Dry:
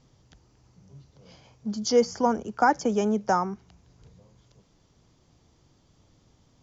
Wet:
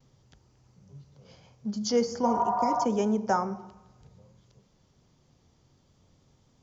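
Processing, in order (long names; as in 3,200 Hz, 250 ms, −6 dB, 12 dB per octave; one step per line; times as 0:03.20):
healed spectral selection 0:02.29–0:02.81, 560–1,900 Hz before
pitch vibrato 0.34 Hz 15 cents
on a send at −12 dB: convolution reverb RT60 1.0 s, pre-delay 3 ms
on the sum: every ending faded ahead of time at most 300 dB per second
level −3 dB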